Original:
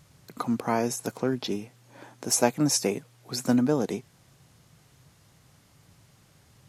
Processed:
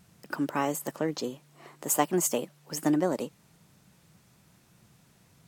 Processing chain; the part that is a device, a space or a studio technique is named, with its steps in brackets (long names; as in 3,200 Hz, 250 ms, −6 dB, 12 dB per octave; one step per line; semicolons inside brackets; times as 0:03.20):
nightcore (speed change +22%)
level −2.5 dB